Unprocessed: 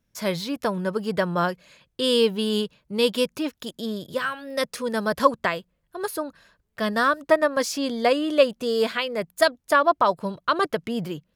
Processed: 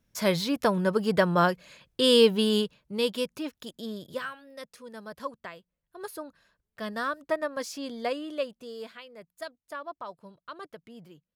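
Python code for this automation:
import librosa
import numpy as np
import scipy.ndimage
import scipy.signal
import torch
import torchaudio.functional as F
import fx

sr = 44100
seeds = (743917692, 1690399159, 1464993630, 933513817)

y = fx.gain(x, sr, db=fx.line((2.4, 1.0), (3.14, -7.0), (4.18, -7.0), (4.58, -17.5), (5.54, -17.5), (6.03, -10.0), (8.08, -10.0), (9.02, -20.0)))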